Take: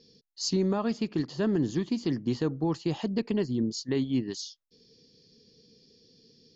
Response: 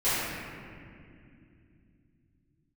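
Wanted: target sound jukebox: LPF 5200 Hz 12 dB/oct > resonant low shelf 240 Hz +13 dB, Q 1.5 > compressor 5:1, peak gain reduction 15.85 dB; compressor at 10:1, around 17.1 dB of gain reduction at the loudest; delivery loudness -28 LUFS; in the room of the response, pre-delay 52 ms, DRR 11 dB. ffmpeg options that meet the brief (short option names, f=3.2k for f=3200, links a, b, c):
-filter_complex "[0:a]acompressor=threshold=-41dB:ratio=10,asplit=2[a][b];[1:a]atrim=start_sample=2205,adelay=52[c];[b][c]afir=irnorm=-1:irlink=0,volume=-25dB[d];[a][d]amix=inputs=2:normalize=0,lowpass=5.2k,lowshelf=f=240:t=q:w=1.5:g=13,acompressor=threshold=-45dB:ratio=5,volume=20.5dB"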